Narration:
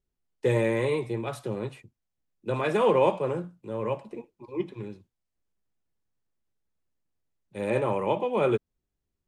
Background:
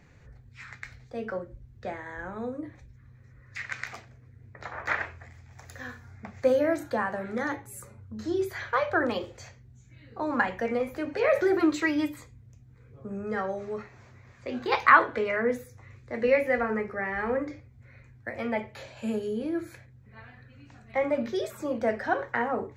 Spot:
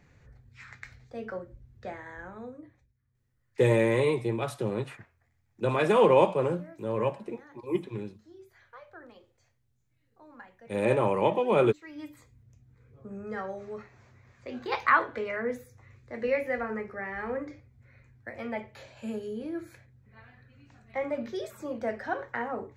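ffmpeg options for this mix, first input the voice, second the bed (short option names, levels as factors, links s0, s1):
-filter_complex "[0:a]adelay=3150,volume=1.19[s0];[1:a]volume=5.62,afade=t=out:st=2.07:d=0.87:silence=0.1,afade=t=in:st=11.83:d=0.69:silence=0.11885[s1];[s0][s1]amix=inputs=2:normalize=0"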